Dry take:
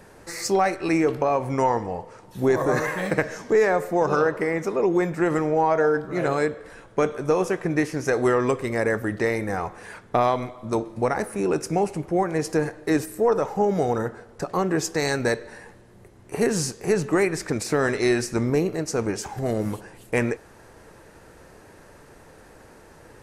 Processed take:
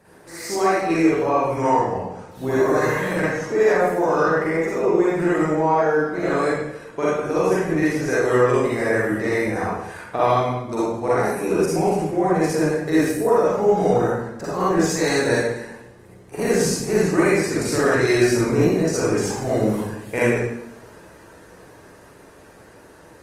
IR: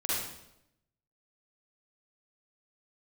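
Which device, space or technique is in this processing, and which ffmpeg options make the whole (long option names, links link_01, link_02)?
far-field microphone of a smart speaker: -filter_complex "[1:a]atrim=start_sample=2205[link_01];[0:a][link_01]afir=irnorm=-1:irlink=0,highpass=frequency=92:poles=1,dynaudnorm=framelen=150:gausssize=31:maxgain=11.5dB,volume=-4.5dB" -ar 48000 -c:a libopus -b:a 24k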